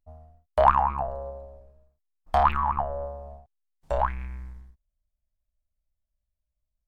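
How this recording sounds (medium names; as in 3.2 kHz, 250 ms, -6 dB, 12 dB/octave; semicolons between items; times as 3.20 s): noise floor -84 dBFS; spectral tilt -2.0 dB/octave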